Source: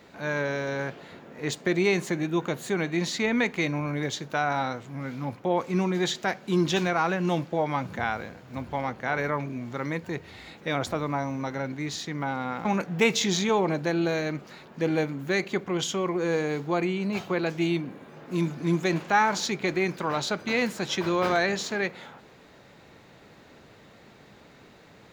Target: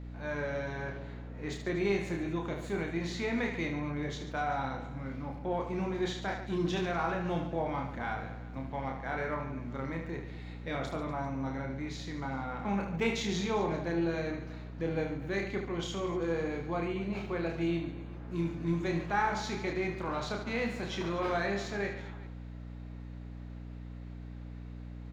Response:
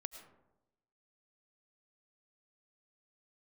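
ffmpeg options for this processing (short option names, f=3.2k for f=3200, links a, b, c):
-filter_complex "[0:a]lowpass=f=3.1k:p=1,aecho=1:1:30|75|142.5|243.8|395.6:0.631|0.398|0.251|0.158|0.1,aeval=exprs='val(0)+0.0224*(sin(2*PI*60*n/s)+sin(2*PI*2*60*n/s)/2+sin(2*PI*3*60*n/s)/3+sin(2*PI*4*60*n/s)/4+sin(2*PI*5*60*n/s)/5)':c=same[a];[1:a]atrim=start_sample=2205,afade=t=out:st=0.15:d=0.01,atrim=end_sample=7056[b];[a][b]afir=irnorm=-1:irlink=0,asplit=2[c][d];[d]aeval=exprs='clip(val(0),-1,0.0473)':c=same,volume=-10dB[e];[c][e]amix=inputs=2:normalize=0,volume=-7dB"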